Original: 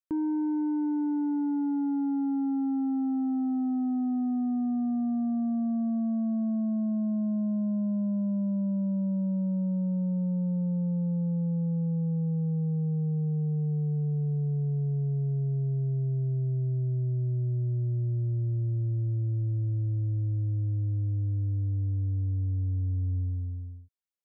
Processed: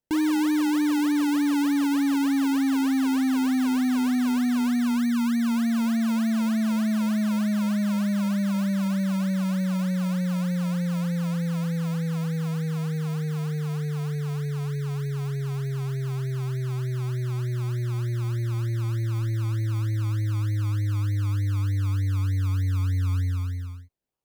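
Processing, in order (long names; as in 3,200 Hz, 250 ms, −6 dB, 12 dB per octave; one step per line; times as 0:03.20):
parametric band 140 Hz −7.5 dB 0.85 octaves
notch filter 710 Hz, Q 15
in parallel at +2 dB: sample-and-hold swept by an LFO 30×, swing 60% 3.3 Hz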